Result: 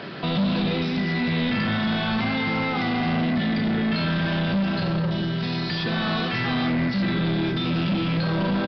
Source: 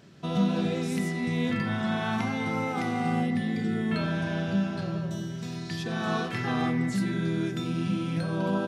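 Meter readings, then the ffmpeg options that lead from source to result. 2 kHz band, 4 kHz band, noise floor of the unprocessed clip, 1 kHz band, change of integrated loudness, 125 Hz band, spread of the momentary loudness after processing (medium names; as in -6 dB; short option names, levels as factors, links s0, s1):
+6.5 dB, +10.5 dB, -35 dBFS, +3.5 dB, +5.0 dB, +5.0 dB, 2 LU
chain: -filter_complex "[0:a]acrossover=split=240|3000[s0][s1][s2];[s1]acompressor=threshold=0.00178:ratio=2[s3];[s0][s3][s2]amix=inputs=3:normalize=0,asplit=2[s4][s5];[s5]highpass=f=720:p=1,volume=31.6,asoftclip=type=tanh:threshold=0.119[s6];[s4][s6]amix=inputs=2:normalize=0,lowpass=f=2200:p=1,volume=0.501,aresample=11025,aresample=44100,volume=1.41"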